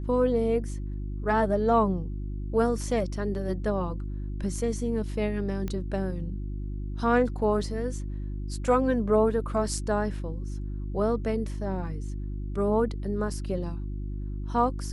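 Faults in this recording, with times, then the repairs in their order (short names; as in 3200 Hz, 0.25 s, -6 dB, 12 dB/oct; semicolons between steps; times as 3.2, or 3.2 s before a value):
hum 50 Hz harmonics 7 -33 dBFS
5.68 pop -20 dBFS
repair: de-click; de-hum 50 Hz, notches 7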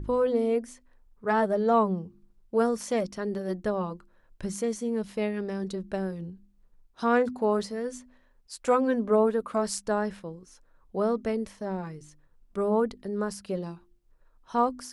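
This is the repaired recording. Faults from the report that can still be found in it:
none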